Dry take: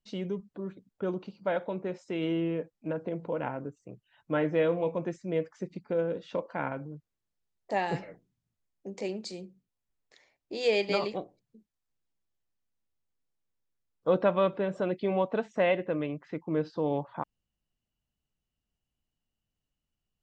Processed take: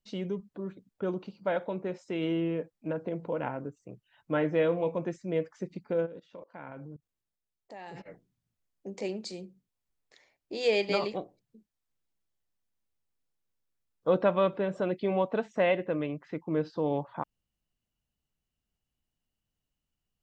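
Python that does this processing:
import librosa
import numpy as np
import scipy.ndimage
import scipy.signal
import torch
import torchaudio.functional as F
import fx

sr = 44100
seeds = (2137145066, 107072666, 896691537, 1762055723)

y = fx.level_steps(x, sr, step_db=22, at=(6.05, 8.05), fade=0.02)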